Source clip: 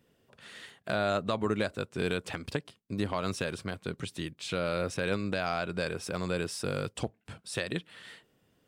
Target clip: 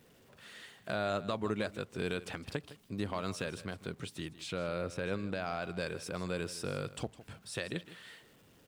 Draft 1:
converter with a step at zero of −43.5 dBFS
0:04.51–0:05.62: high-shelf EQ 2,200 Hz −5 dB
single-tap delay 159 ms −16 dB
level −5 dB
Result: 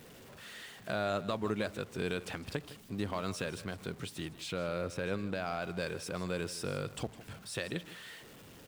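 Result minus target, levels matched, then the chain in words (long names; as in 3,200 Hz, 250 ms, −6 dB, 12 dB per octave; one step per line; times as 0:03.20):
converter with a step at zero: distortion +10 dB
converter with a step at zero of −54 dBFS
0:04.51–0:05.62: high-shelf EQ 2,200 Hz −5 dB
single-tap delay 159 ms −16 dB
level −5 dB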